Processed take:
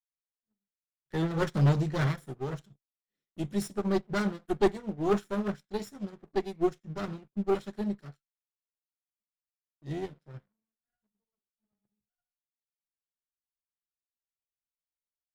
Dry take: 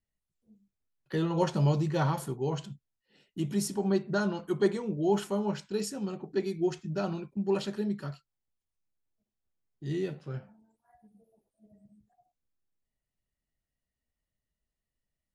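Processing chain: comb filter that takes the minimum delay 0.54 ms; waveshaping leveller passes 2; upward expansion 2.5:1, over -33 dBFS

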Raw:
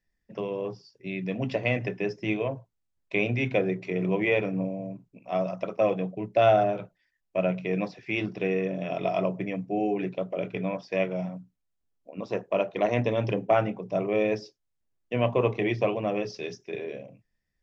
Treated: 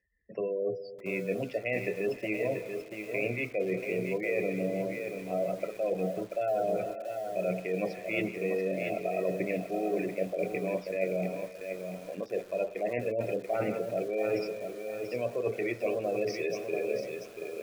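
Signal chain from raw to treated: graphic EQ 125/250/500/1000/2000/4000 Hz -10/-6/+4/-9/+3/-7 dB; on a send: thinning echo 170 ms, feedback 35%, high-pass 1.1 kHz, level -18.5 dB; on the sum: Schroeder reverb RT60 2.4 s, combs from 25 ms, DRR 16.5 dB; reverse; compression 8:1, threshold -34 dBFS, peak gain reduction 16.5 dB; reverse; spectral gate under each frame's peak -25 dB strong; high-pass 42 Hz 24 dB/octave; bit-crushed delay 686 ms, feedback 35%, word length 9-bit, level -6 dB; trim +6 dB

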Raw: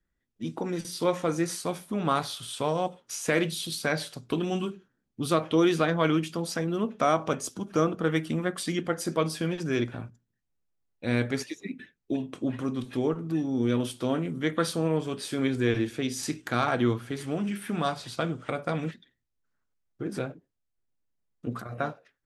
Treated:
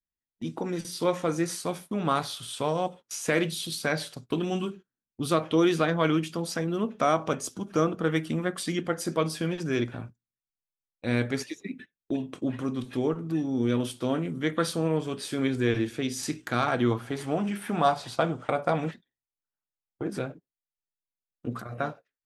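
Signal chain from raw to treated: gate -43 dBFS, range -19 dB; 16.91–20.10 s: peaking EQ 790 Hz +9 dB 1.1 oct

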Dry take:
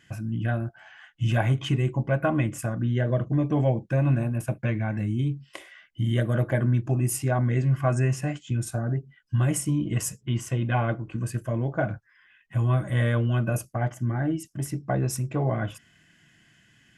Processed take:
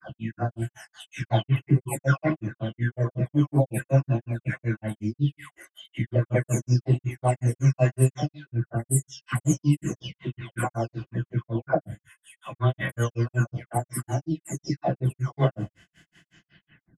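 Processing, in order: delay that grows with frequency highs early, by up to 670 ms; delay 104 ms -16 dB; granulator 143 ms, grains 5.4 per s, spray 28 ms, pitch spread up and down by 0 st; trim +7 dB

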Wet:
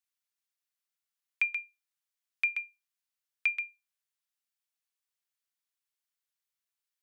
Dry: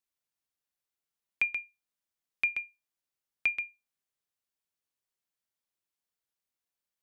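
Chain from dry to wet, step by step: high-pass 1.2 kHz 12 dB/octave; on a send: reverberation RT60 0.15 s, pre-delay 3 ms, DRR 23.5 dB

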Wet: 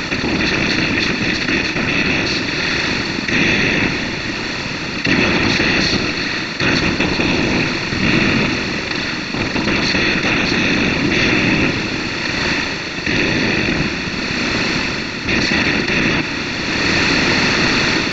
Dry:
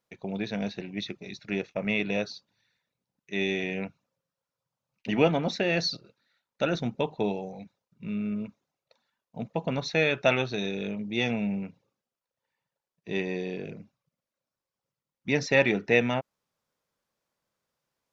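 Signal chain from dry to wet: spectral levelling over time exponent 0.2; in parallel at 0 dB: peak limiter -11 dBFS, peak gain reduction 10.5 dB; on the sum: level rider; whisper effect; high-order bell 570 Hz -13 dB 1.1 oct; Schroeder reverb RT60 3.3 s, combs from 28 ms, DRR 8.5 dB; trim +1.5 dB

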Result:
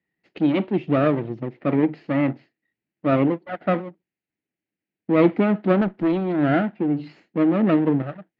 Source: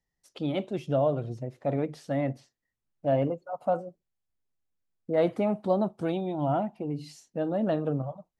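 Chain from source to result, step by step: comb filter that takes the minimum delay 0.43 ms; cabinet simulation 170–3200 Hz, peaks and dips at 190 Hz +4 dB, 320 Hz +8 dB, 540 Hz -3 dB, 1.1 kHz -5 dB, 1.9 kHz +3 dB; 5.81–6.30 s: valve stage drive 21 dB, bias 0.25; trim +7.5 dB

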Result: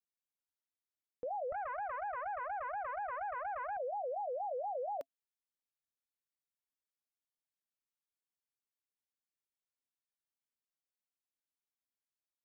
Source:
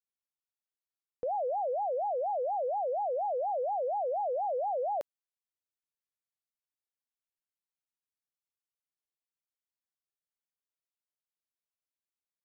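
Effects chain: peaking EQ 270 Hz +7 dB 0.25 oct; band-stop 680 Hz, Q 20; 1.52–3.77 s: loudspeaker Doppler distortion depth 0.68 ms; trim -6.5 dB

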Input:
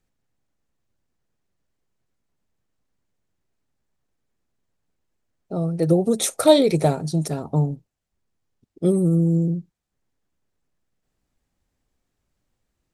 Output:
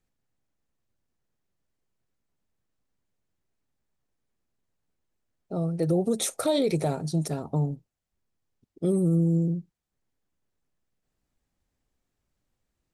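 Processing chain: peak limiter -12.5 dBFS, peak gain reduction 9.5 dB; trim -4 dB

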